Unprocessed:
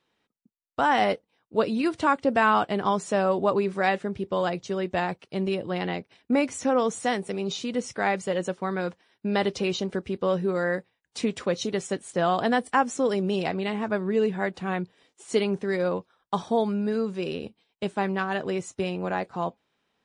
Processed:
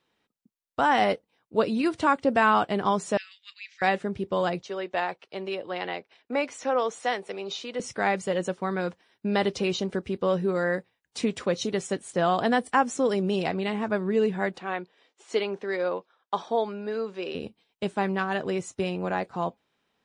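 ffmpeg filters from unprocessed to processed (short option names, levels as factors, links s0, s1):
-filter_complex "[0:a]asettb=1/sr,asplit=3[s0][s1][s2];[s0]atrim=end=3.174[s3];[s1]atrim=start=3.17:end=3.82,asetpts=PTS-STARTPTS,afade=t=in:d=0.004:c=qsin,afade=t=out:st=0.646:d=0.004:c=qsin,asuperpass=centerf=3600:order=12:qfactor=0.74[s4];[s2]atrim=start=3.816[s5];[s3][s4]acrossfade=d=0.004:c1=hsin:c2=qsin[s6];[s6][s5]acrossfade=d=0.004:c1=qsin:c2=hsin,asettb=1/sr,asplit=3[s7][s8][s9];[s7]atrim=end=4.624[s10];[s8]atrim=start=4.62:end=7.8,asetpts=PTS-STARTPTS,afade=t=in:d=0.004:c=qsin,afade=t=out:st=3.176:d=0.004:c=qsin,acrossover=split=370 5900:gain=0.141 1 0.224[s11][s12][s13];[s11][s12][s13]amix=inputs=3:normalize=0[s14];[s9]atrim=start=7.796[s15];[s10][s14]acrossfade=d=0.004:c1=hsin:c2=qsin[s16];[s16][s15]acrossfade=d=0.004:c1=qsin:c2=hsin,asettb=1/sr,asplit=3[s17][s18][s19];[s17]atrim=end=14.584[s20];[s18]atrim=start=14.58:end=17.35,asetpts=PTS-STARTPTS,afade=t=in:d=0.004:c=qsin,afade=t=out:st=2.766:d=0.004:c=qsin,highpass=380,lowpass=4900[s21];[s19]atrim=start=17.346[s22];[s20][s21]acrossfade=d=0.004:c1=hsin:c2=qsin[s23];[s23][s22]acrossfade=d=0.004:c1=qsin:c2=hsin"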